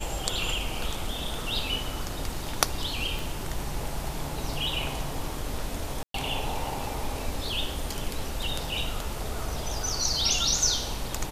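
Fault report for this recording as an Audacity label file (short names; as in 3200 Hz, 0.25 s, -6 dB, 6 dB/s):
3.190000	3.190000	pop
6.030000	6.140000	gap 0.113 s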